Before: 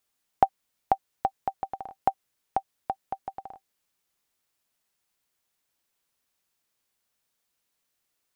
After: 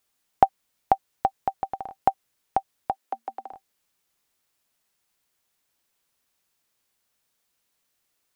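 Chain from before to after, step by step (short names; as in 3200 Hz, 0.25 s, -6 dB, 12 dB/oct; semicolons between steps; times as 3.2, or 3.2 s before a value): 2.91–3.53 Chebyshev high-pass 230 Hz, order 10; gain +3.5 dB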